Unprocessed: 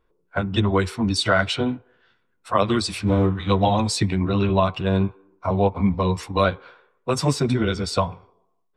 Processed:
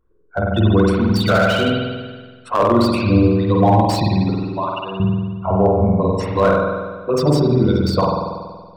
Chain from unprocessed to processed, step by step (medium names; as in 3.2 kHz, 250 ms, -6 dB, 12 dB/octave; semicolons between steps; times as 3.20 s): resonances exaggerated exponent 2; 4.30–5.00 s: high-pass 1.5 kHz 6 dB/octave; spring tank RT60 1.5 s, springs 47 ms, chirp 35 ms, DRR -3 dB; slew-rate limiter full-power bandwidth 210 Hz; trim +2 dB